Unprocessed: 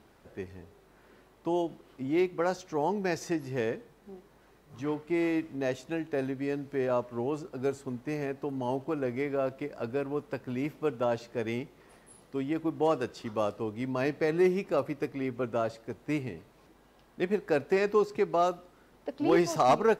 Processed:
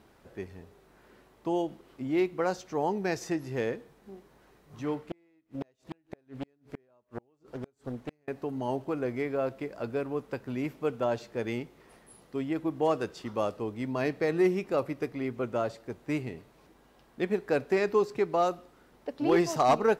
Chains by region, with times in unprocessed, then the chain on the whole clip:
5.00–8.28 s: inverted gate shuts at -24 dBFS, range -37 dB + loudspeaker Doppler distortion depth 0.61 ms
whole clip: none

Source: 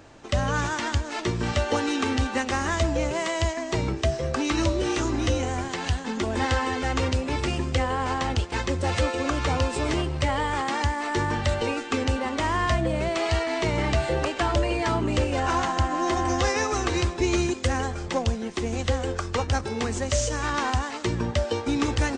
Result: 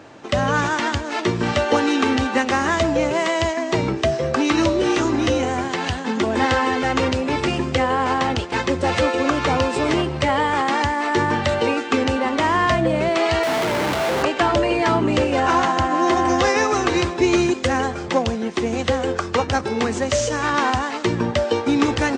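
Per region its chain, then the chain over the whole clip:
13.43–14.23 s: bass shelf 290 Hz -6.5 dB + Schmitt trigger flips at -35.5 dBFS
whole clip: high-pass 140 Hz 12 dB/octave; treble shelf 6.8 kHz -11.5 dB; trim +7.5 dB

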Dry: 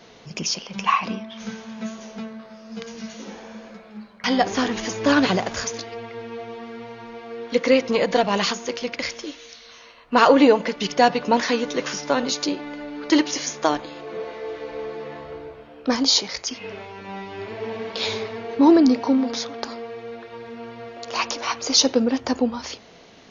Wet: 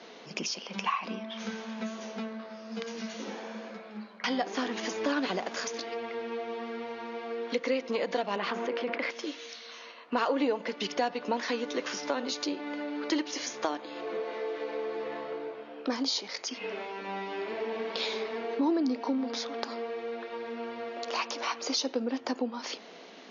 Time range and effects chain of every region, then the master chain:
8.36–9.11 s: band-pass 180–2000 Hz + level flattener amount 70%
whole clip: high-pass 220 Hz 24 dB/octave; compression 2.5:1, threshold -32 dBFS; low-pass 5.7 kHz 12 dB/octave

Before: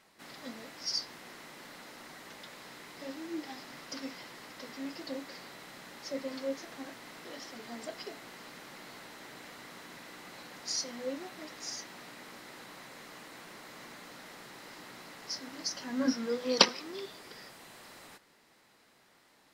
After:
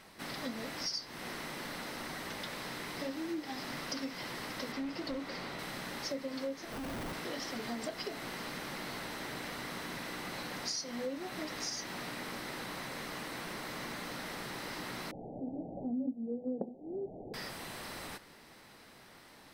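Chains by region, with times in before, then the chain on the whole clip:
4.72–5.59 s: treble shelf 6.7 kHz -10.5 dB + band-stop 1.7 kHz, Q 21 + hard clipper -37 dBFS
6.72–7.13 s: distance through air 390 m + Schmitt trigger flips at -56 dBFS
15.11–17.34 s: steep low-pass 800 Hz 96 dB/octave + dynamic bell 240 Hz, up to +8 dB, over -46 dBFS, Q 3.3
whole clip: bass shelf 140 Hz +9 dB; band-stop 7 kHz, Q 8.4; compression 6:1, threshold -43 dBFS; trim +7.5 dB

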